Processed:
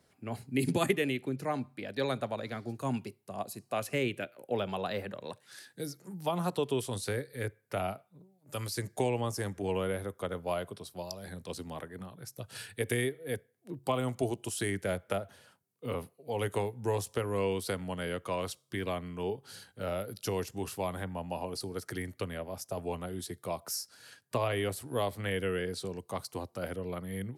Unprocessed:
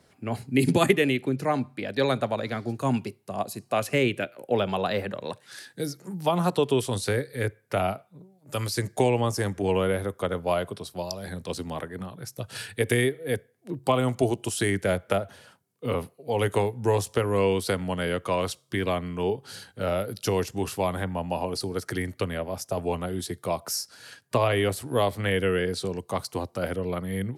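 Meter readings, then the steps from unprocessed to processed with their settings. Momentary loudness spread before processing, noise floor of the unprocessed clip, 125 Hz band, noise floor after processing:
11 LU, -63 dBFS, -8.0 dB, -71 dBFS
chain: high shelf 11000 Hz +6.5 dB; gain -8 dB

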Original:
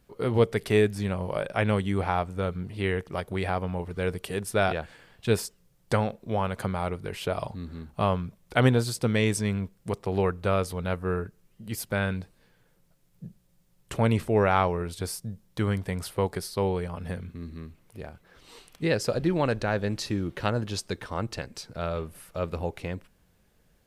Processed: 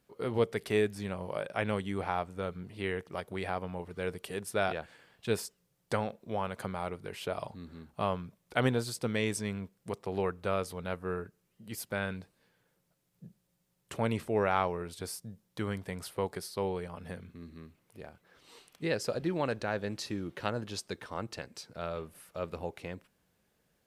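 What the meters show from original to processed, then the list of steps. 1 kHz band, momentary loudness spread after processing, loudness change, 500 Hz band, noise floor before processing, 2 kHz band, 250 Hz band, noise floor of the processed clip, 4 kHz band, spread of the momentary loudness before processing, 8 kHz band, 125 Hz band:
-5.5 dB, 14 LU, -7.0 dB, -6.0 dB, -65 dBFS, -5.5 dB, -7.5 dB, -76 dBFS, -5.5 dB, 14 LU, -5.5 dB, -10.5 dB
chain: HPF 170 Hz 6 dB/oct; gain -5.5 dB

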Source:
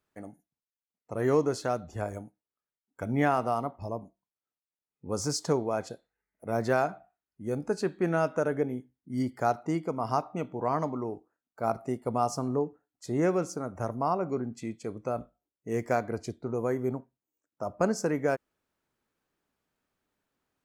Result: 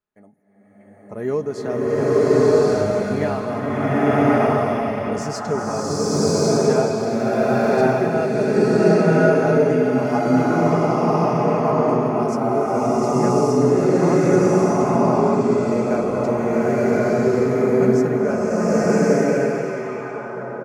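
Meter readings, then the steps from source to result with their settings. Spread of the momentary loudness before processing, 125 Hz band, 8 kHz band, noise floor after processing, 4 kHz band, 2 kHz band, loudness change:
13 LU, +13.5 dB, +9.5 dB, -45 dBFS, +11.0 dB, +12.0 dB, +12.5 dB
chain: high shelf 4900 Hz -8.5 dB; comb 4.8 ms, depth 46%; delay with a stepping band-pass 0.636 s, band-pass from 2800 Hz, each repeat -1.4 oct, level -6 dB; AGC gain up to 13 dB; dynamic EQ 1100 Hz, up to -5 dB, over -30 dBFS, Q 1; bloom reverb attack 1.13 s, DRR -11.5 dB; gain -8.5 dB

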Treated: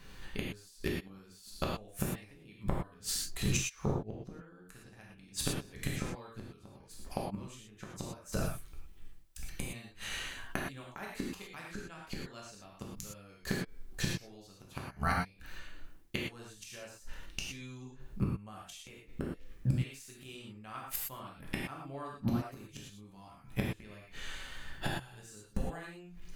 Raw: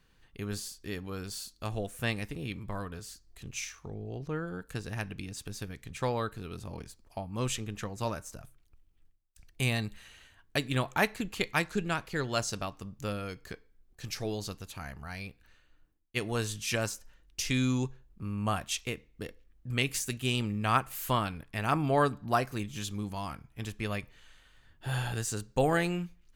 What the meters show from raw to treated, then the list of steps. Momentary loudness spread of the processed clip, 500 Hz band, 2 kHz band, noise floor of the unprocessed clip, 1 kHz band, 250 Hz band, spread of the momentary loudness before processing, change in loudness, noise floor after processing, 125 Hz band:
17 LU, -9.0 dB, -7.0 dB, -65 dBFS, -9.5 dB, -5.0 dB, 14 LU, -6.0 dB, -58 dBFS, -4.5 dB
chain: flipped gate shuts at -30 dBFS, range -32 dB; non-linear reverb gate 0.14 s flat, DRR -3 dB; gain +10.5 dB

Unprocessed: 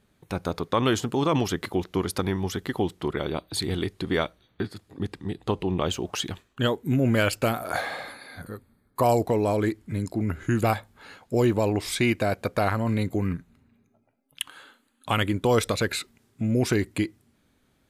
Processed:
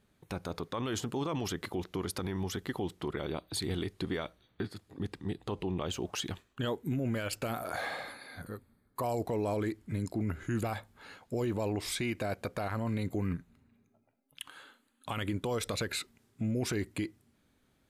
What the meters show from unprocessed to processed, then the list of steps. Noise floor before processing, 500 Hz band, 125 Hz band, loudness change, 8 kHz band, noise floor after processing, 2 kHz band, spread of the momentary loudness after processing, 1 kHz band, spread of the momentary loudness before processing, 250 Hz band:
-67 dBFS, -10.0 dB, -8.5 dB, -9.0 dB, -6.0 dB, -72 dBFS, -9.5 dB, 11 LU, -10.5 dB, 12 LU, -9.0 dB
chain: limiter -20 dBFS, peak gain reduction 11 dB; gain -4.5 dB

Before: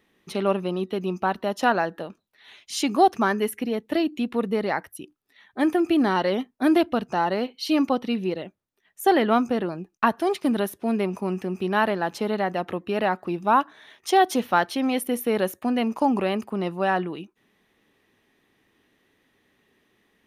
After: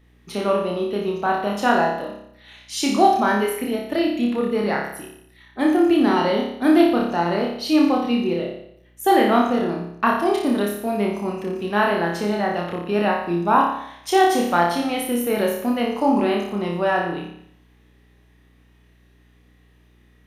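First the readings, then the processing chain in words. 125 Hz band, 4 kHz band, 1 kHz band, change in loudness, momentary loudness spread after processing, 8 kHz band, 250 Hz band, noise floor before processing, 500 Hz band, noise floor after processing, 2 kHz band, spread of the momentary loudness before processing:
+3.0 dB, +3.5 dB, +3.5 dB, +3.5 dB, 10 LU, +3.5 dB, +4.0 dB, -70 dBFS, +3.5 dB, -55 dBFS, +3.5 dB, 9 LU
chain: flutter echo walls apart 5 m, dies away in 0.7 s; hum 60 Hz, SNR 34 dB

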